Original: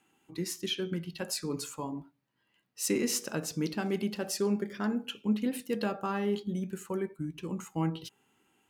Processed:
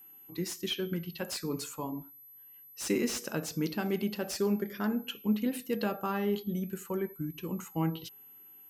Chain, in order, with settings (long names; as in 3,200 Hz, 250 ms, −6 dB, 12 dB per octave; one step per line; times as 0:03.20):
steady tone 12,000 Hz −51 dBFS
slew-rate limiting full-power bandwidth 130 Hz